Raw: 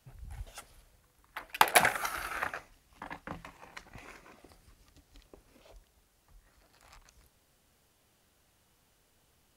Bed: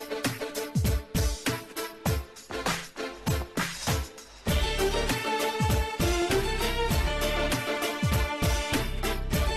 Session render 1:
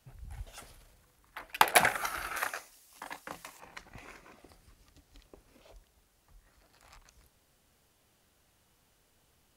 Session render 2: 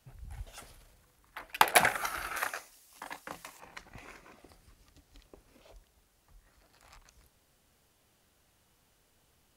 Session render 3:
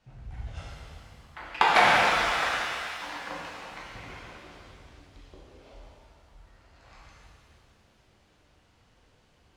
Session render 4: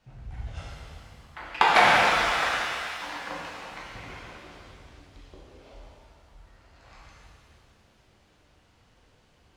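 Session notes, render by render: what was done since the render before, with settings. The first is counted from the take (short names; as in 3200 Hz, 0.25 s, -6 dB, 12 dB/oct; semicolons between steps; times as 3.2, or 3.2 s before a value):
0.53–1.41 transient shaper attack -3 dB, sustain +6 dB; 2.36–3.6 tone controls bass -12 dB, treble +13 dB
nothing audible
air absorption 130 m; shimmer reverb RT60 2.2 s, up +7 st, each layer -8 dB, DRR -6.5 dB
gain +1.5 dB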